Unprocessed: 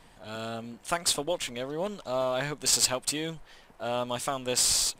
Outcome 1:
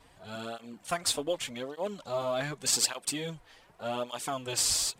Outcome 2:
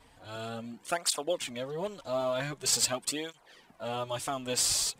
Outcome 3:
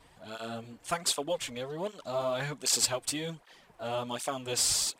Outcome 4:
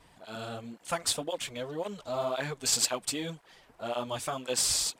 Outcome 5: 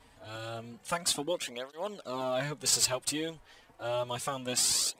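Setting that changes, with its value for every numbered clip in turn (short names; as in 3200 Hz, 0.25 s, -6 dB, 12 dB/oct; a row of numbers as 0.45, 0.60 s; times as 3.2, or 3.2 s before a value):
tape flanging out of phase, nulls at: 0.85, 0.45, 1.3, 1.9, 0.29 Hz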